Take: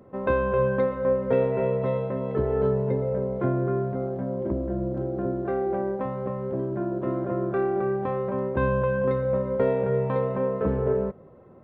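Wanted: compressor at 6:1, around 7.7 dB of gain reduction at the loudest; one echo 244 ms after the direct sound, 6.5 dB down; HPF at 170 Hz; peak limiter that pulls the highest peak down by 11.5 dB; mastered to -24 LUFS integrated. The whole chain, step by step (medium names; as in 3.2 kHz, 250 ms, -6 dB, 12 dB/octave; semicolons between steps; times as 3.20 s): high-pass 170 Hz; compression 6:1, threshold -27 dBFS; peak limiter -29 dBFS; delay 244 ms -6.5 dB; trim +11.5 dB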